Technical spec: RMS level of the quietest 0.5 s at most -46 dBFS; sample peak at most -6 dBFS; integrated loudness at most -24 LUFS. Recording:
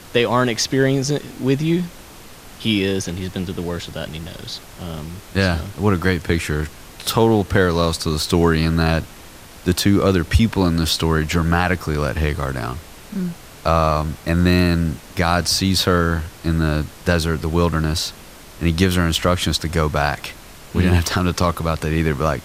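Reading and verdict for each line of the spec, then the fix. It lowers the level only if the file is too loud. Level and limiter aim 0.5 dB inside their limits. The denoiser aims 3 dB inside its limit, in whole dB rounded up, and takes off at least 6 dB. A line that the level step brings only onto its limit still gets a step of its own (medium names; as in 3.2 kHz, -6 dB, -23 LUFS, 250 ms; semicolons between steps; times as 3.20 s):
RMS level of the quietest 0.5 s -40 dBFS: fail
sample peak -2.5 dBFS: fail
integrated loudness -19.5 LUFS: fail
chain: noise reduction 6 dB, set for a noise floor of -40 dBFS; trim -5 dB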